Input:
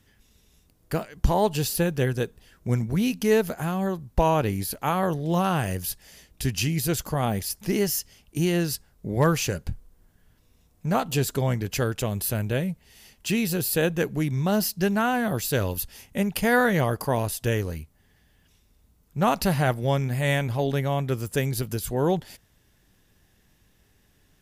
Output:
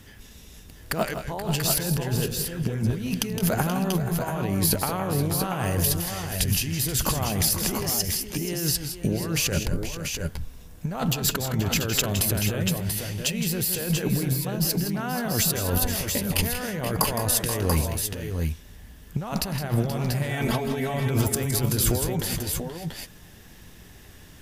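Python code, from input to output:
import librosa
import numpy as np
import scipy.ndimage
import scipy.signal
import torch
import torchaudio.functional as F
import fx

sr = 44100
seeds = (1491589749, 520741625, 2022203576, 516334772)

y = fx.peak_eq(x, sr, hz=9300.0, db=-11.5, octaves=0.28, at=(11.1, 12.04))
y = fx.comb(y, sr, ms=4.5, depth=0.85, at=(20.29, 20.94))
y = fx.over_compress(y, sr, threshold_db=-33.0, ratio=-1.0)
y = fx.echo_multitap(y, sr, ms=(163, 185, 479, 498, 686, 698), db=(-9.5, -15.0, -12.0, -20.0, -6.5, -11.5))
y = y * librosa.db_to_amplitude(5.5)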